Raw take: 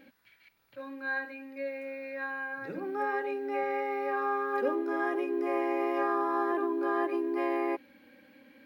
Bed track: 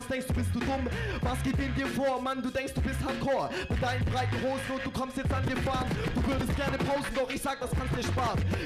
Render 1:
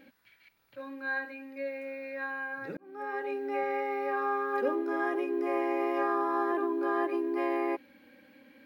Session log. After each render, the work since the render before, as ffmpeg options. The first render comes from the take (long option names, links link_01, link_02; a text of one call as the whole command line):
ffmpeg -i in.wav -filter_complex "[0:a]asplit=2[link_01][link_02];[link_01]atrim=end=2.77,asetpts=PTS-STARTPTS,afade=type=out:start_time=2.766:duration=0.004:curve=hsin[link_03];[link_02]atrim=start=2.77,asetpts=PTS-STARTPTS,afade=type=in:duration=0.57[link_04];[link_03][link_04]concat=n=2:v=0:a=1" out.wav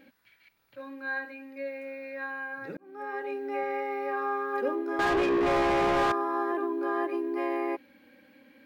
ffmpeg -i in.wav -filter_complex "[0:a]asettb=1/sr,asplit=3[link_01][link_02][link_03];[link_01]atrim=end=4.994[link_04];[link_02]atrim=start=4.99:end=6.12,asetpts=PTS-STARTPTS,afade=type=in:duration=0.004:curve=qsin,afade=type=out:start_time=1.126:duration=0.004:curve=qsin,asplit=2[link_05][link_06];[link_06]highpass=frequency=720:poles=1,volume=31dB,asoftclip=type=tanh:threshold=-18dB[link_07];[link_05][link_07]amix=inputs=2:normalize=0,lowpass=frequency=1700:poles=1,volume=-6dB[link_08];[link_03]atrim=start=6.116[link_09];[link_04][link_08]acrossfade=duration=0.004:curve1=hsin:curve2=qsin[link_10];[link_10][link_09]acrossfade=duration=0.004:curve1=qsin:curve2=hsin" out.wav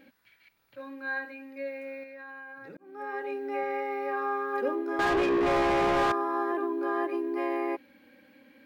ffmpeg -i in.wav -filter_complex "[0:a]asettb=1/sr,asplit=3[link_01][link_02][link_03];[link_01]atrim=end=2.034[link_04];[link_02]atrim=start=2.03:end=2.94,asetpts=PTS-STARTPTS,afade=type=in:duration=0.004:curve=qsin,afade=type=out:start_time=0.906:duration=0.004:curve=qsin,acompressor=threshold=-42dB:ratio=6:attack=3.2:release=140:knee=1:detection=peak[link_05];[link_03]atrim=start=2.936[link_06];[link_04][link_05]acrossfade=duration=0.004:curve1=hsin:curve2=qsin[link_07];[link_07][link_06]acrossfade=duration=0.004:curve1=qsin:curve2=hsin" out.wav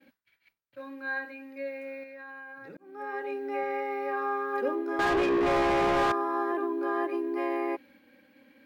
ffmpeg -i in.wav -af "agate=range=-33dB:threshold=-54dB:ratio=3:detection=peak" out.wav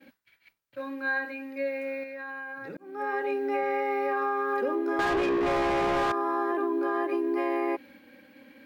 ffmpeg -i in.wav -filter_complex "[0:a]asplit=2[link_01][link_02];[link_02]alimiter=level_in=0.5dB:limit=-24dB:level=0:latency=1,volume=-0.5dB,volume=0dB[link_03];[link_01][link_03]amix=inputs=2:normalize=0,acompressor=threshold=-24dB:ratio=6" out.wav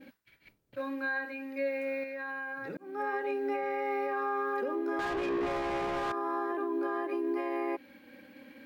ffmpeg -i in.wav -filter_complex "[0:a]acrossover=split=500|1500[link_01][link_02][link_03];[link_01]acompressor=mode=upward:threshold=-50dB:ratio=2.5[link_04];[link_04][link_02][link_03]amix=inputs=3:normalize=0,alimiter=level_in=0.5dB:limit=-24dB:level=0:latency=1:release=452,volume=-0.5dB" out.wav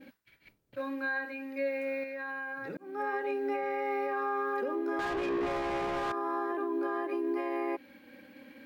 ffmpeg -i in.wav -af anull out.wav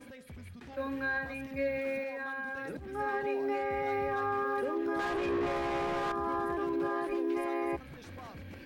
ffmpeg -i in.wav -i bed.wav -filter_complex "[1:a]volume=-18.5dB[link_01];[0:a][link_01]amix=inputs=2:normalize=0" out.wav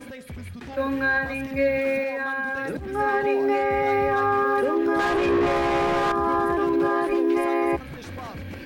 ffmpeg -i in.wav -af "volume=10.5dB" out.wav